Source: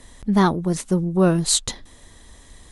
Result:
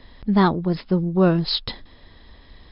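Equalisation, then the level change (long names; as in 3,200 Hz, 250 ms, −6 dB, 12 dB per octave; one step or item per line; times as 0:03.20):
linear-phase brick-wall low-pass 5,300 Hz
0.0 dB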